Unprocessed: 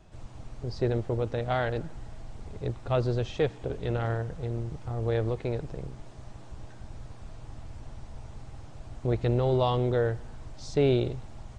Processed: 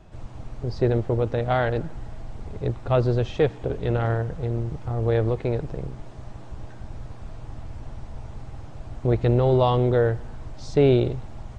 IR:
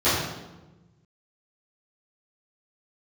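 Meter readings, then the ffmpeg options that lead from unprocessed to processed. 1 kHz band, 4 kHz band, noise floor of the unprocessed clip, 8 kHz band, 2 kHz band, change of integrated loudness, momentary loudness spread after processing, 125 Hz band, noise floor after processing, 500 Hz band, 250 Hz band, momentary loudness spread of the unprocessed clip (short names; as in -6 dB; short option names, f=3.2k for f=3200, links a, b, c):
+5.5 dB, +2.5 dB, -45 dBFS, n/a, +4.5 dB, +6.0 dB, 21 LU, +6.0 dB, -39 dBFS, +6.0 dB, +6.0 dB, 21 LU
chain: -af "highshelf=f=3.5k:g=-7.5,volume=6dB"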